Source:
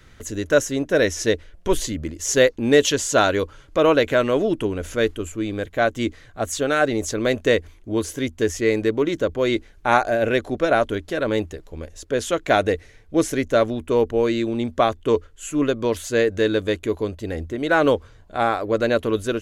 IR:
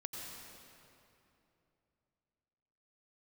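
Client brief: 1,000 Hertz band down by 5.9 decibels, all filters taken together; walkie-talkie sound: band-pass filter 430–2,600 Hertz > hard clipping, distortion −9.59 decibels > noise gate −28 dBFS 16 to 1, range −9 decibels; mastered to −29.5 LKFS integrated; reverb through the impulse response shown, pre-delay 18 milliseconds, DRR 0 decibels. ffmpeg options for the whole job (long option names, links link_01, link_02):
-filter_complex "[0:a]equalizer=frequency=1000:width_type=o:gain=-8.5,asplit=2[link_01][link_02];[1:a]atrim=start_sample=2205,adelay=18[link_03];[link_02][link_03]afir=irnorm=-1:irlink=0,volume=1dB[link_04];[link_01][link_04]amix=inputs=2:normalize=0,highpass=430,lowpass=2600,asoftclip=type=hard:threshold=-19dB,agate=range=-9dB:threshold=-28dB:ratio=16,volume=-4dB"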